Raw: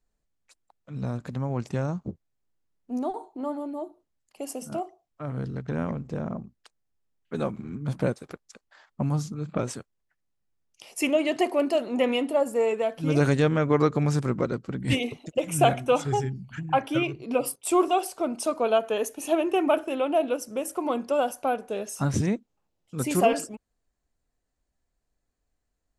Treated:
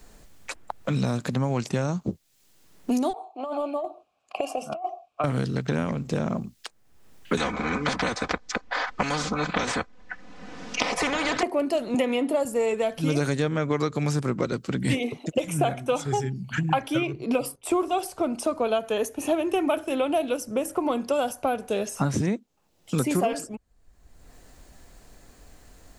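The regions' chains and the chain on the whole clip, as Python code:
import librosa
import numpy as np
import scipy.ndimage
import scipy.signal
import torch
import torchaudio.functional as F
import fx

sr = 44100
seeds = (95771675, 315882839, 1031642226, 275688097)

y = fx.chain(x, sr, fx.vowel_filter(vowel='a'),
    fx.over_compress(threshold_db=-46.0, ratio=-1.0), at=(3.13, 5.24))
y = fx.chain(y, sr, fx.lowpass(hz=6400.0, slope=24),
    fx.comb(ms=4.0, depth=0.98),
    fx.spectral_comp(ratio=4.0), at=(7.37, 11.43))
y = fx.chain(y, sr, fx.highpass(hz=110.0, slope=12),
    fx.notch(hz=5600.0, q=24.0),
    fx.band_squash(depth_pct=40), at=(11.94, 12.45))
y = fx.dynamic_eq(y, sr, hz=2800.0, q=6.6, threshold_db=-49.0, ratio=4.0, max_db=-5)
y = fx.band_squash(y, sr, depth_pct=100)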